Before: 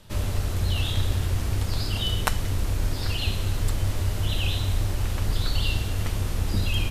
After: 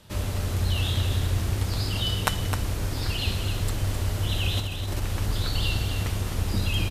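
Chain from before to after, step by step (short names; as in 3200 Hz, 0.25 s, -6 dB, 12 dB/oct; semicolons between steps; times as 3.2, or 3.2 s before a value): HPF 50 Hz 6 dB/oct; 4.57–5.02 negative-ratio compressor -29 dBFS, ratio -0.5; echo 0.26 s -7.5 dB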